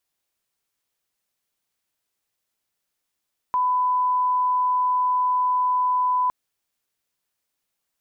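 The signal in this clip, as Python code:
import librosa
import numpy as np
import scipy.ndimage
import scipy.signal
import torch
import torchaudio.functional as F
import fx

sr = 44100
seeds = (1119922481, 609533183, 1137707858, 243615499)

y = fx.lineup_tone(sr, length_s=2.76, level_db=-18.0)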